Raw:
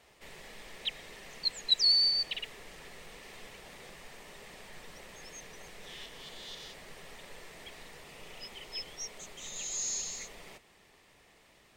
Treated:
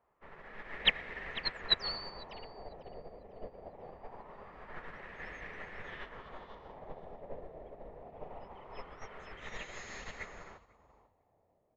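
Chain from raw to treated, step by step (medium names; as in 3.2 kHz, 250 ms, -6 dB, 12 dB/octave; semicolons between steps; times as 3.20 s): frequency-shifting echo 498 ms, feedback 42%, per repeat +40 Hz, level -7 dB; LFO low-pass sine 0.23 Hz 620–1800 Hz; upward expansion 2.5:1, over -57 dBFS; trim +15.5 dB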